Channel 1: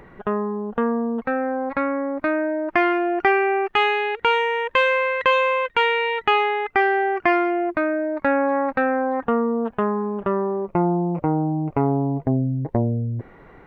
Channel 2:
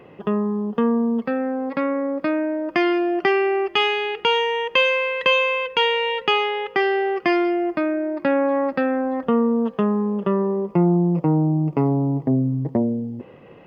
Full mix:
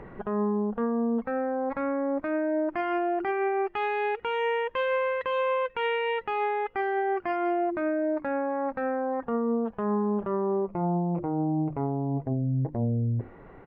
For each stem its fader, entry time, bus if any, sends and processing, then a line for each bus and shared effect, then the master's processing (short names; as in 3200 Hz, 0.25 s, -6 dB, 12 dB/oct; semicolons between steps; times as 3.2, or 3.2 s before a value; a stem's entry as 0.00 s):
-1.0 dB, 0.00 s, no send, LPF 1100 Hz 6 dB/oct; notches 50/100/150/200/250/300/350 Hz
-20.0 dB, 4.4 ms, no send, dry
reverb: off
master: vocal rider 0.5 s; limiter -20.5 dBFS, peak gain reduction 10.5 dB